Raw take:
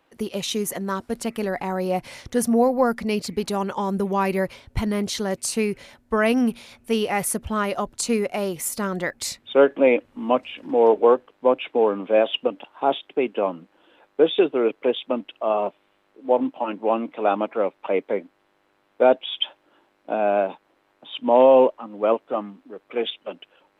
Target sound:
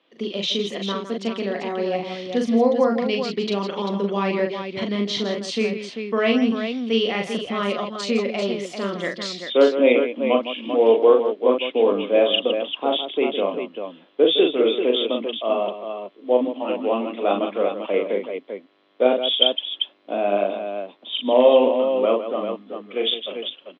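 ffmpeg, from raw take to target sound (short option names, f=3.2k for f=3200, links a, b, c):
-af "highpass=f=190:w=0.5412,highpass=f=190:w=1.3066,equalizer=f=860:t=q:w=4:g=-9,equalizer=f=1.5k:t=q:w=4:g=-7,equalizer=f=3.3k:t=q:w=4:g=9,lowpass=f=5k:w=0.5412,lowpass=f=5k:w=1.3066,aecho=1:1:40|160|393:0.631|0.316|0.447"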